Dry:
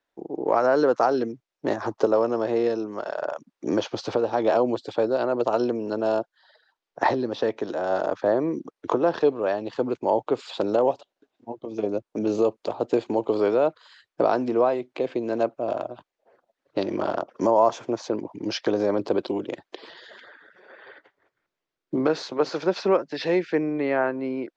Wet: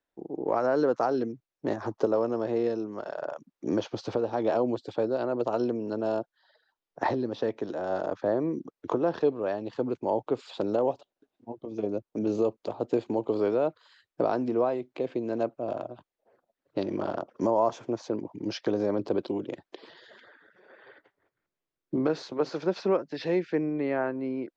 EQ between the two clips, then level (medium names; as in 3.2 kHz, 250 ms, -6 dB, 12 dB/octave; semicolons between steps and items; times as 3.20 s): bass shelf 340 Hz +8 dB; -7.5 dB